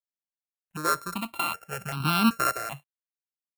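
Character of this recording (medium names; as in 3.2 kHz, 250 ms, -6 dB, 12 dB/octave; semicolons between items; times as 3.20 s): a buzz of ramps at a fixed pitch in blocks of 32 samples; random-step tremolo; a quantiser's noise floor 12-bit, dither none; notches that jump at a steady rate 2.6 Hz 670–1900 Hz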